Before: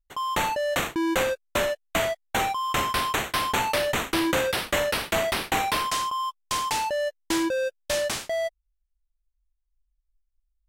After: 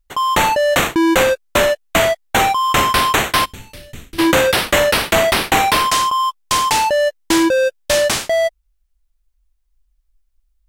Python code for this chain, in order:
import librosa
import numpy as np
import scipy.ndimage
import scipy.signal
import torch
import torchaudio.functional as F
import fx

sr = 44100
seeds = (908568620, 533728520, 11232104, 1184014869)

p1 = fx.tone_stack(x, sr, knobs='10-0-1', at=(3.44, 4.18), fade=0.02)
p2 = np.clip(p1, -10.0 ** (-23.0 / 20.0), 10.0 ** (-23.0 / 20.0))
p3 = p1 + (p2 * 10.0 ** (-6.5 / 20.0))
y = p3 * 10.0 ** (8.0 / 20.0)